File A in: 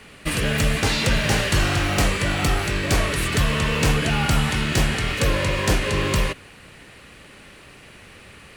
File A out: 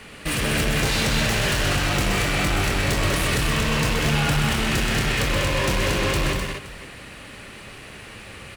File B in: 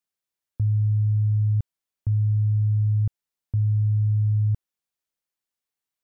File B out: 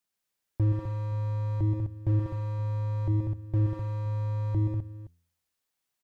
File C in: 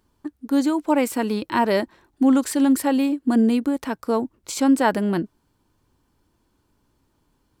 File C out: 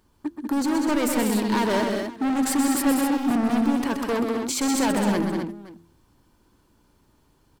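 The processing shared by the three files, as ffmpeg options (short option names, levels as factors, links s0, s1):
-filter_complex "[0:a]bandreject=f=84.58:t=h:w=4,bandreject=f=169.16:t=h:w=4,bandreject=f=253.74:t=h:w=4,bandreject=f=338.32:t=h:w=4,bandreject=f=422.9:t=h:w=4,asplit=2[s0][s1];[s1]alimiter=limit=0.2:level=0:latency=1,volume=0.794[s2];[s0][s2]amix=inputs=2:normalize=0,asoftclip=type=hard:threshold=0.106,aecho=1:1:118|127|194|256|521:0.106|0.473|0.501|0.447|0.112,volume=0.794"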